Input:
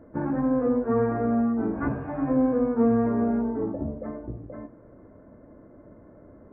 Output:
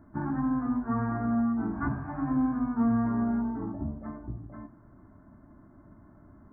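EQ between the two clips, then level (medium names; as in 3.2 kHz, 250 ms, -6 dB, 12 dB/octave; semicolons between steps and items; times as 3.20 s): static phaser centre 1.2 kHz, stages 4; 0.0 dB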